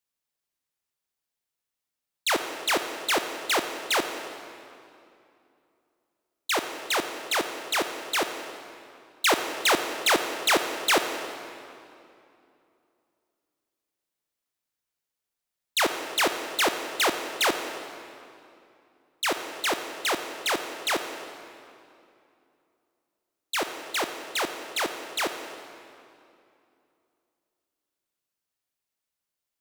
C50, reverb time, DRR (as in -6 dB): 7.0 dB, 2.7 s, 6.5 dB